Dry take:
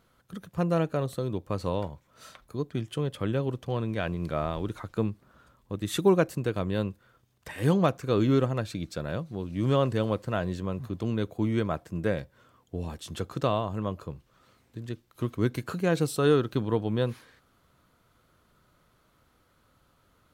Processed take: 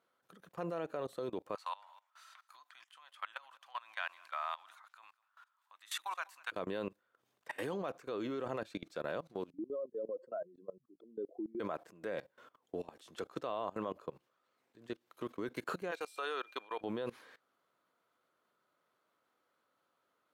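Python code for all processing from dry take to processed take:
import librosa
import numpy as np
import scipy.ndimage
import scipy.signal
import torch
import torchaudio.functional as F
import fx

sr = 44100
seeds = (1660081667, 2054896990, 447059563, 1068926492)

y = fx.chain(x, sr, fx.cheby2_highpass(hz=460.0, order=4, stop_db=40),
    fx.echo_single(ms=199, db=-21.5), at=(1.55, 6.52))
y = fx.chain(y, sr, fx.spec_expand(power=2.7),
    fx.highpass(hz=300.0, slope=24), at=(9.5, 11.6))
y = fx.highpass(y, sr, hz=850.0, slope=12, at=(15.9, 16.8), fade=0.02)
y = fx.dmg_tone(y, sr, hz=2400.0, level_db=-49.0, at=(15.9, 16.8), fade=0.02)
y = scipy.signal.sosfilt(scipy.signal.butter(2, 400.0, 'highpass', fs=sr, output='sos'), y)
y = fx.high_shelf(y, sr, hz=3300.0, db=-7.5)
y = fx.level_steps(y, sr, step_db=21)
y = F.gain(torch.from_numpy(y), 4.0).numpy()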